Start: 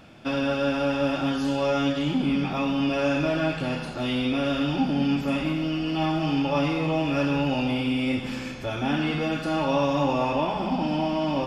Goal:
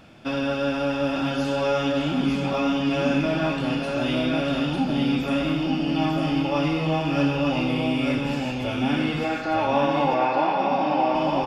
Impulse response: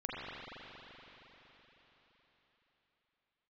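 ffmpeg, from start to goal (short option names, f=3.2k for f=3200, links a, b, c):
-filter_complex "[0:a]asettb=1/sr,asplit=3[a][b][c];[a]atrim=end=9.244[d];[b]atrim=start=9.24:end=11.15,asetpts=PTS-STARTPTS,afade=t=in:d=0.004:c=qsin,afade=t=out:st=1.906:d=0.004:c=qsin,highpass=f=140:w=0.5412,highpass=f=140:w=1.3066,equalizer=f=160:t=q:w=4:g=-10,equalizer=f=240:t=q:w=4:g=-6,equalizer=f=770:t=q:w=4:g=8,equalizer=f=1.5k:t=q:w=4:g=4,equalizer=f=2.2k:t=q:w=4:g=6,equalizer=f=3.1k:t=q:w=4:g=-6,lowpass=f=4.9k:w=0.5412,lowpass=f=4.9k:w=1.3066[e];[c]atrim=start=11.146[f];[d][e]acrossfade=d=0.004:c1=hsin:c2=qsin[g];[g][f]acrossfade=d=0.004:c1=qsin:c2=hsin,aecho=1:1:901:0.668"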